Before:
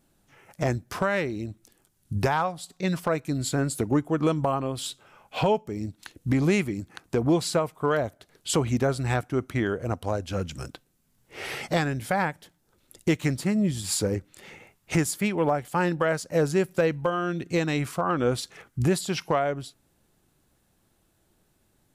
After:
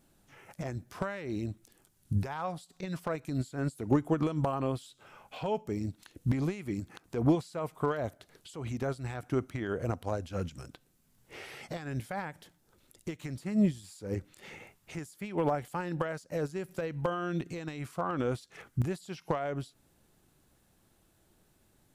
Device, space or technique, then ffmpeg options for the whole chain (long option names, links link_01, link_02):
de-esser from a sidechain: -filter_complex "[0:a]asplit=2[link_01][link_02];[link_02]highpass=4200,apad=whole_len=967593[link_03];[link_01][link_03]sidechaincompress=threshold=-53dB:ratio=6:attack=3.9:release=92"